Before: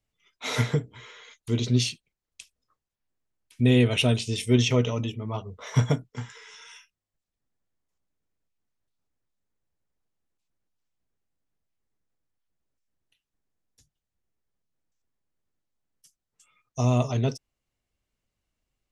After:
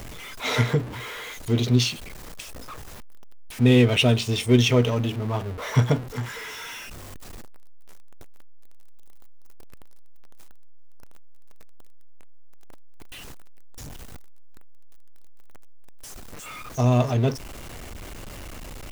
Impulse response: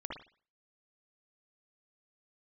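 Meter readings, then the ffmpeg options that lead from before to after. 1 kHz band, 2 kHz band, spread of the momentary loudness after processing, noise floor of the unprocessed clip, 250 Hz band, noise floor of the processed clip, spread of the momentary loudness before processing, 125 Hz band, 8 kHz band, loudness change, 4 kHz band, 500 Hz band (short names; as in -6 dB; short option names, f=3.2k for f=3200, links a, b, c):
+5.0 dB, +5.0 dB, 23 LU, under -85 dBFS, +3.5 dB, -39 dBFS, 19 LU, +3.0 dB, +2.0 dB, +2.5 dB, +4.0 dB, +4.0 dB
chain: -filter_complex "[0:a]aeval=exprs='val(0)+0.5*0.0224*sgn(val(0))':c=same,equalizer=f=160:t=o:w=0.77:g=-2.5,asplit=2[a][b];[b]adynamicsmooth=sensitivity=8:basefreq=1.5k,volume=-1.5dB[c];[a][c]amix=inputs=2:normalize=0,volume=-2dB"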